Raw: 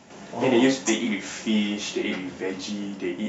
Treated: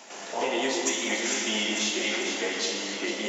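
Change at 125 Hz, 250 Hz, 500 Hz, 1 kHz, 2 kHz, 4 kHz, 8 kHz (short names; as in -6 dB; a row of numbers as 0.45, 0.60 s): under -10 dB, -9.0 dB, -3.5 dB, +0.5 dB, +2.5 dB, +4.0 dB, n/a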